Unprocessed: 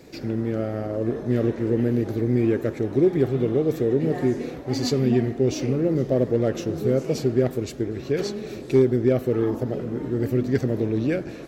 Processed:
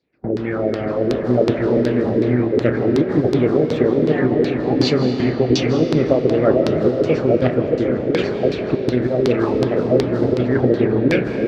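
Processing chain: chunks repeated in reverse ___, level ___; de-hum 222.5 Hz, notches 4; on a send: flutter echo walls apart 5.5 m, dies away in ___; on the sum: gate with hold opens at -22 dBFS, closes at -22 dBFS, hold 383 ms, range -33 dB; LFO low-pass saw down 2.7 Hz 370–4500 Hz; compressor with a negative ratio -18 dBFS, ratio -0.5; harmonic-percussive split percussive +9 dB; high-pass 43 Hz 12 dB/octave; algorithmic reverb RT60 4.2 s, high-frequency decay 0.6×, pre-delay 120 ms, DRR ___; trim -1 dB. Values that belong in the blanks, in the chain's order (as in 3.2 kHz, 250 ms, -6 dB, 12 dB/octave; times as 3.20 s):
530 ms, -7.5 dB, 0.22 s, 7 dB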